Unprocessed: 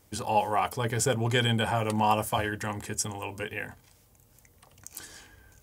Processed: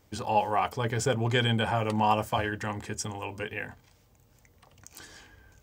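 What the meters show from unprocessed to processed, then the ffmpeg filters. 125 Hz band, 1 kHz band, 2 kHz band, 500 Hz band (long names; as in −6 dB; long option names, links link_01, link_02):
0.0 dB, 0.0 dB, −0.5 dB, 0.0 dB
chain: -af "equalizer=frequency=11000:width=1.2:gain=-15"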